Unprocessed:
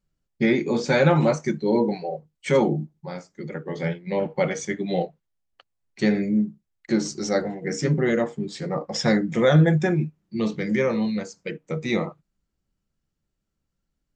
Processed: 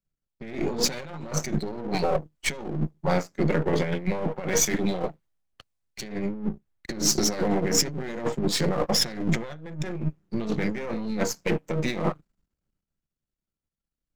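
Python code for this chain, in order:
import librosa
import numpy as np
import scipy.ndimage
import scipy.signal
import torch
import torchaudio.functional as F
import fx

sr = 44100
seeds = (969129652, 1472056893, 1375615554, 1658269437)

y = np.where(x < 0.0, 10.0 ** (-12.0 / 20.0) * x, x)
y = fx.over_compress(y, sr, threshold_db=-34.0, ratio=-1.0)
y = fx.leveller(y, sr, passes=1)
y = fx.band_widen(y, sr, depth_pct=40)
y = y * librosa.db_to_amplitude(3.0)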